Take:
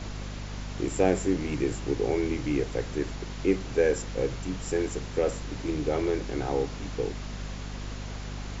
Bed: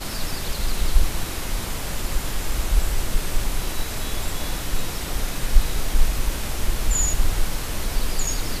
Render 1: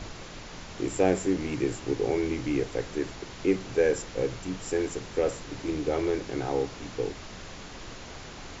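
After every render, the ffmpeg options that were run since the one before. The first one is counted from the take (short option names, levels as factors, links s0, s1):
-af "bandreject=f=50:t=h:w=6,bandreject=f=100:t=h:w=6,bandreject=f=150:t=h:w=6,bandreject=f=200:t=h:w=6,bandreject=f=250:t=h:w=6"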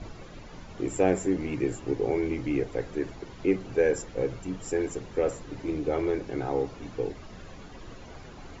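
-af "afftdn=nr=11:nf=-43"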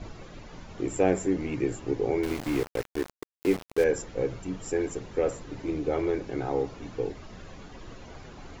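-filter_complex "[0:a]asettb=1/sr,asplit=3[s0][s1][s2];[s0]atrim=end=2.234[s3];[s1]atrim=start=2.23:end=3.84,asetpts=PTS-STARTPTS,afade=t=in:d=0.004:c=qsin,afade=t=out:st=1.606:d=0.004:c=qsin,aeval=exprs='val(0)*gte(abs(val(0)),0.0266)':c=same[s4];[s2]atrim=start=3.836[s5];[s3][s4]acrossfade=d=0.004:c1=hsin:c2=qsin[s6];[s6][s5]acrossfade=d=0.004:c1=qsin:c2=hsin"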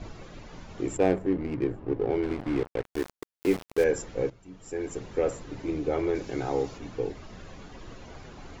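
-filter_complex "[0:a]asplit=3[s0][s1][s2];[s0]afade=t=out:st=0.96:d=0.02[s3];[s1]adynamicsmooth=sensitivity=3:basefreq=890,afade=t=in:st=0.96:d=0.02,afade=t=out:st=2.84:d=0.02[s4];[s2]afade=t=in:st=2.84:d=0.02[s5];[s3][s4][s5]amix=inputs=3:normalize=0,asettb=1/sr,asplit=3[s6][s7][s8];[s6]atrim=end=6.154[s9];[s7]atrim=start=6.15:end=6.78,asetpts=PTS-STARTPTS,afade=t=in:d=0.004:c=qsin,afade=t=out:st=0.626:d=0.004:c=qsin,highshelf=f=4000:g=10[s10];[s8]atrim=start=6.776[s11];[s9][s10]acrossfade=d=0.004:c1=hsin:c2=qsin[s12];[s12][s11]acrossfade=d=0.004:c1=qsin:c2=hsin,asplit=2[s13][s14];[s13]atrim=end=4.3,asetpts=PTS-STARTPTS,afade=t=out:st=4.296:d=0.004:c=hsin:silence=0.16788[s15];[s14]atrim=start=4.3,asetpts=PTS-STARTPTS,afade=t=in:d=0.7:c=qua:silence=0.16788[s16];[s15][s16]concat=n=2:v=0:a=1"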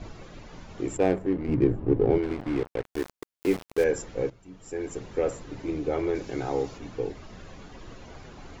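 -filter_complex "[0:a]asettb=1/sr,asplit=3[s0][s1][s2];[s0]atrim=end=1.484[s3];[s1]atrim=start=1.48:end=2.18,asetpts=PTS-STARTPTS,afade=t=in:d=0.004:c=qsin,afade=t=out:st=0.696:d=0.004:c=qsin,lowshelf=f=420:g=10[s4];[s2]atrim=start=2.176[s5];[s3][s4]acrossfade=d=0.004:c1=hsin:c2=qsin[s6];[s6][s5]acrossfade=d=0.004:c1=qsin:c2=hsin"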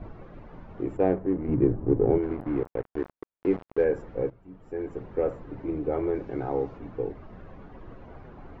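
-af "lowpass=1400"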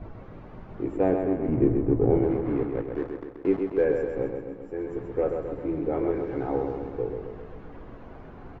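-filter_complex "[0:a]asplit=2[s0][s1];[s1]adelay=18,volume=0.251[s2];[s0][s2]amix=inputs=2:normalize=0,asplit=2[s3][s4];[s4]aecho=0:1:131|262|393|524|655|786|917|1048:0.531|0.313|0.185|0.109|0.0643|0.038|0.0224|0.0132[s5];[s3][s5]amix=inputs=2:normalize=0"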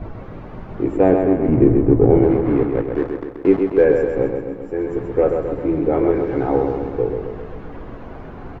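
-af "volume=2.99,alimiter=limit=0.794:level=0:latency=1"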